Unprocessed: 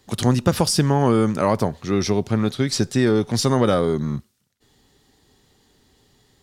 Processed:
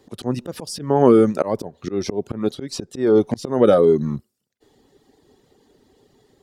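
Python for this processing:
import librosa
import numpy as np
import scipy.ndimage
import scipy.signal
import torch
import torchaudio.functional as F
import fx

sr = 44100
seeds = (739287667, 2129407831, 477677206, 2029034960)

y = fx.dereverb_blind(x, sr, rt60_s=0.69)
y = fx.auto_swell(y, sr, attack_ms=222.0)
y = fx.peak_eq(y, sr, hz=420.0, db=13.0, octaves=2.3)
y = y * librosa.db_to_amplitude(-3.5)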